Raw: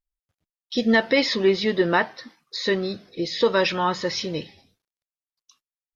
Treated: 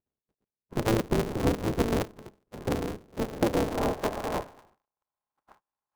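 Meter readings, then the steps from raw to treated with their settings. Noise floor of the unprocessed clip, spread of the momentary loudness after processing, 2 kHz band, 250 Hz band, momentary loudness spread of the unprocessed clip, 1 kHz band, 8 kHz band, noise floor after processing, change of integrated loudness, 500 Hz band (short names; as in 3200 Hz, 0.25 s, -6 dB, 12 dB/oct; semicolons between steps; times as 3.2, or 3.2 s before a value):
under -85 dBFS, 10 LU, -14.0 dB, -5.0 dB, 12 LU, -6.5 dB, n/a, under -85 dBFS, -7.0 dB, -7.0 dB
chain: spectral contrast lowered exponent 0.15; treble ducked by the level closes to 560 Hz, closed at -16.5 dBFS; in parallel at -1 dB: compressor, threshold -39 dBFS, peak gain reduction 17 dB; on the sum: small resonant body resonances 940/1500 Hz, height 13 dB, ringing for 35 ms; low-pass sweep 320 Hz -> 1000 Hz, 3.05–5.35; air absorption 340 m; polarity switched at an audio rate 110 Hz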